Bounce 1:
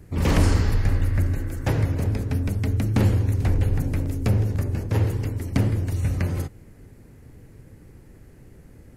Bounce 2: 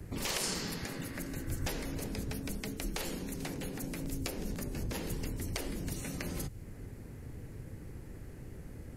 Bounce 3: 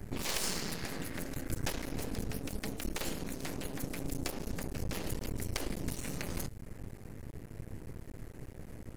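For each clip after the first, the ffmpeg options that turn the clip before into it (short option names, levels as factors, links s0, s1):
-filter_complex "[0:a]afftfilt=real='re*lt(hypot(re,im),0.316)':imag='im*lt(hypot(re,im),0.316)':win_size=1024:overlap=0.75,acrossover=split=150|3000[s0][s1][s2];[s1]acompressor=threshold=0.00447:ratio=2.5[s3];[s0][s3][s2]amix=inputs=3:normalize=0,volume=1.12"
-af "aeval=exprs='max(val(0),0)':c=same,volume=1.58"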